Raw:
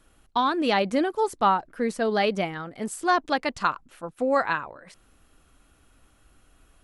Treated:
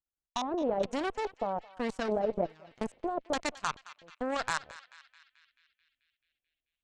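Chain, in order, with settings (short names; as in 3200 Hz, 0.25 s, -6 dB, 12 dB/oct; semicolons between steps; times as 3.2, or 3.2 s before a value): level quantiser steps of 15 dB; gate -53 dBFS, range -19 dB; added harmonics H 7 -18 dB, 8 -24 dB, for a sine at -17 dBFS; LFO low-pass square 1.2 Hz 600–7400 Hz; on a send: narrowing echo 0.218 s, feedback 67%, band-pass 2800 Hz, level -14 dB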